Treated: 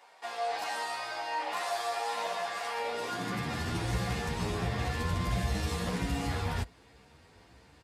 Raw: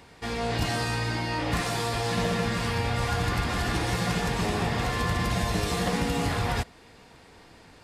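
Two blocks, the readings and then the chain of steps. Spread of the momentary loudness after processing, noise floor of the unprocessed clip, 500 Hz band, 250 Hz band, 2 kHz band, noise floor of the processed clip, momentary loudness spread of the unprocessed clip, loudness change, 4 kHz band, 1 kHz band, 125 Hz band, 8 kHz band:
3 LU, −53 dBFS, −6.0 dB, −7.5 dB, −6.5 dB, −59 dBFS, 2 LU, −6.0 dB, −7.0 dB, −3.5 dB, −6.5 dB, −7.0 dB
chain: high-pass filter sweep 730 Hz → 61 Hz, 0:02.72–0:03.87
barber-pole flanger 10.3 ms +1.4 Hz
level −4 dB

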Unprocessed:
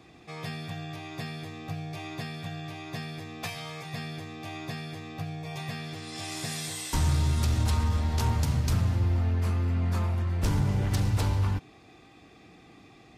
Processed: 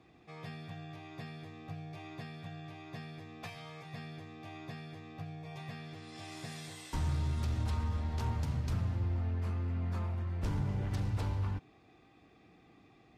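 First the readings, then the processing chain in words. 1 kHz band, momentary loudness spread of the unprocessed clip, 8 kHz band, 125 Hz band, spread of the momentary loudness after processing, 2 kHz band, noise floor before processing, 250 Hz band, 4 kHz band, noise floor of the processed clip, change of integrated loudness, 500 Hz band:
−8.5 dB, 12 LU, −16.0 dB, −8.0 dB, 13 LU, −9.5 dB, −54 dBFS, −8.0 dB, −12.5 dB, −63 dBFS, −8.5 dB, −8.0 dB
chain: high-shelf EQ 4,800 Hz −11 dB
level −8 dB

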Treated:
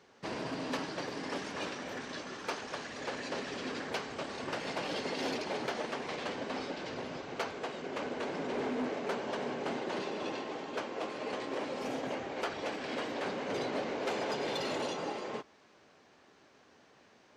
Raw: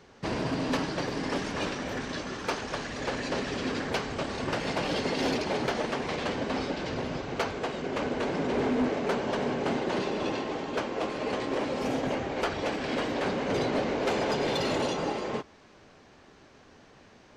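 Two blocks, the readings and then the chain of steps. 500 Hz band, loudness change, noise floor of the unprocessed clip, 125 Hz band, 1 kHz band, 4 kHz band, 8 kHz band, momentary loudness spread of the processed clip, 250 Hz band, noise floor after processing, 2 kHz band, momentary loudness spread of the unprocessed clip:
−6.5 dB, −7.0 dB, −56 dBFS, −12.0 dB, −6.0 dB, −5.5 dB, −5.5 dB, 5 LU, −8.5 dB, −63 dBFS, −5.5 dB, 5 LU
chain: high-pass filter 270 Hz 6 dB per octave
level −5.5 dB

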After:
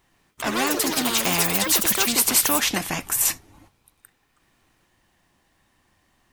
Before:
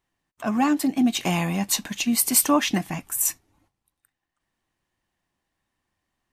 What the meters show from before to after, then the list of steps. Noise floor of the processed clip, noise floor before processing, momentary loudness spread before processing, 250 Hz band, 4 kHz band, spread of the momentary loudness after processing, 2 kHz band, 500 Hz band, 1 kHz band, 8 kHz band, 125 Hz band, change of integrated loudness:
−67 dBFS, −83 dBFS, 9 LU, −6.0 dB, +6.0 dB, 9 LU, +5.5 dB, +2.0 dB, +0.5 dB, +3.5 dB, −4.5 dB, +2.5 dB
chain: delay with pitch and tempo change per echo 111 ms, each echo +5 semitones, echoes 3, each echo −6 dB
every bin compressed towards the loudest bin 2 to 1

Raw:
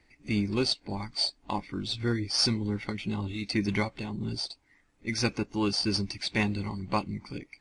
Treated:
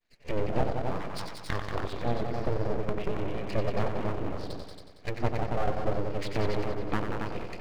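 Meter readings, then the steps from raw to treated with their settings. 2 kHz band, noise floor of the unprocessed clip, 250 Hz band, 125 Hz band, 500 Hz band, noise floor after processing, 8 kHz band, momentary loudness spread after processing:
−4.0 dB, −68 dBFS, −5.0 dB, 0.0 dB, +5.0 dB, −50 dBFS, −14.0 dB, 8 LU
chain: low-pass filter 3,900 Hz 12 dB per octave
downward expander −55 dBFS
treble cut that deepens with the level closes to 680 Hz, closed at −28.5 dBFS
low-shelf EQ 79 Hz −10.5 dB
echo machine with several playback heads 92 ms, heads all three, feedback 41%, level −7 dB
full-wave rectification
level +4 dB

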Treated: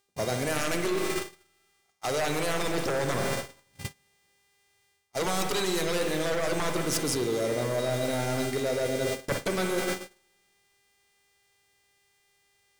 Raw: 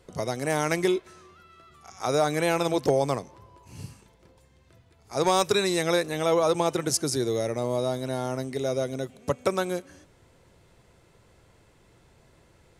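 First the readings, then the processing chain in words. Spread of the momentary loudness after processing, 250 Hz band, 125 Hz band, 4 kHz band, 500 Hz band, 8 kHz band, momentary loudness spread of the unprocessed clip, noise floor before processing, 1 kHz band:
9 LU, −2.0 dB, −1.5 dB, −0.5 dB, −3.5 dB, −0.5 dB, 10 LU, −60 dBFS, −4.0 dB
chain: high-shelf EQ 4,200 Hz +4 dB
in parallel at −10 dB: bit-depth reduction 6 bits, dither triangular
on the sum: hum with harmonics 400 Hz, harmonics 25, −41 dBFS −2 dB per octave
sine wavefolder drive 9 dB, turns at −8.5 dBFS
spring reverb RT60 2 s, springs 48/58 ms, chirp 50 ms, DRR 4 dB
noise gate −18 dBFS, range −43 dB
reversed playback
downward compressor 6 to 1, threshold −27 dBFS, peak gain reduction 18 dB
reversed playback

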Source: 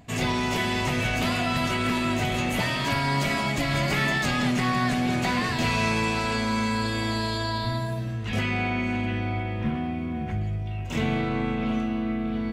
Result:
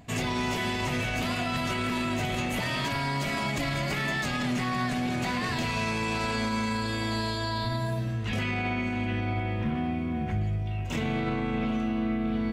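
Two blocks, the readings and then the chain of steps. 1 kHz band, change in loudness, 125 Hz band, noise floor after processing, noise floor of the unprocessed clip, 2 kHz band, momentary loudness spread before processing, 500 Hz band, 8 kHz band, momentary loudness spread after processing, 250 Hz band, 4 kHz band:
−3.5 dB, −3.5 dB, −2.5 dB, −31 dBFS, −30 dBFS, −4.0 dB, 6 LU, −3.0 dB, −3.5 dB, 2 LU, −3.0 dB, −3.5 dB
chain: brickwall limiter −20.5 dBFS, peak gain reduction 7 dB

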